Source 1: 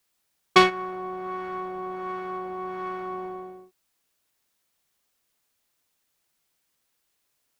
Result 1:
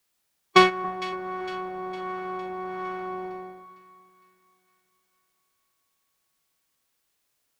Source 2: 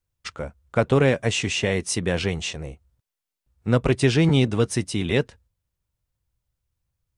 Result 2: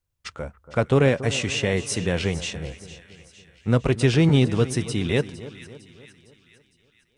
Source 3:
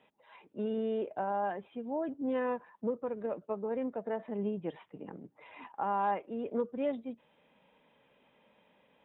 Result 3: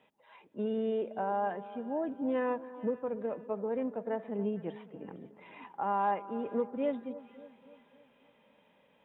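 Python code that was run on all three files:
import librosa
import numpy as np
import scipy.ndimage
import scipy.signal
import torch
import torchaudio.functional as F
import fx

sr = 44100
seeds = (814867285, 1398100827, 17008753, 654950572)

y = fx.echo_split(x, sr, split_hz=1400.0, low_ms=282, high_ms=457, feedback_pct=52, wet_db=-15.5)
y = fx.hpss(y, sr, part='harmonic', gain_db=3)
y = F.gain(torch.from_numpy(y), -2.0).numpy()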